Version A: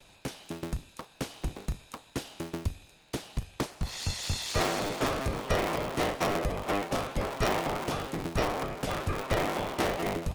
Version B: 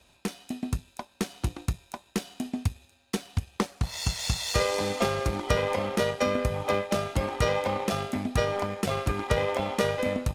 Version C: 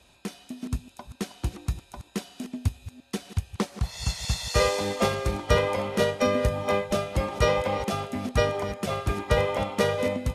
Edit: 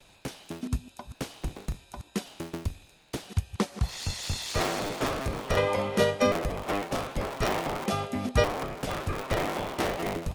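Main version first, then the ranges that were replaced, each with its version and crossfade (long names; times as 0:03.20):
A
0:00.61–0:01.14: punch in from C
0:01.80–0:02.26: punch in from C
0:03.28–0:03.88: punch in from C
0:05.57–0:06.32: punch in from C
0:07.86–0:08.44: punch in from C
not used: B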